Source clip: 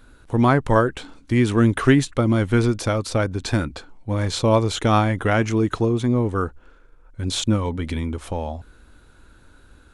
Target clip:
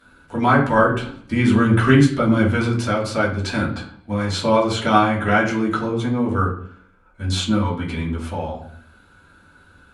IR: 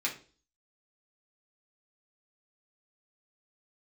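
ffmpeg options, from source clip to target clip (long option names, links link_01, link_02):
-filter_complex "[0:a]asettb=1/sr,asplit=3[link_01][link_02][link_03];[link_01]atrim=end=0.774[link_04];[link_02]atrim=start=0.77:end=2.51,asetpts=PTS-STARTPTS,afade=type=in:duration=0.004:curve=qsin,afade=type=out:start_time=1.736:duration=0.004:curve=qsin,lowshelf=frequency=200:gain=8[link_05];[link_03]atrim=start=2.506[link_06];[link_04][link_05]acrossfade=duration=0.004:curve1=hsin:curve2=qsin[link_07];[link_07][link_06]acrossfade=duration=0.004:curve1=qsin:curve2=hsin[link_08];[1:a]atrim=start_sample=2205,asetrate=27783,aresample=44100[link_09];[link_08][link_09]afir=irnorm=-1:irlink=0,volume=-6dB"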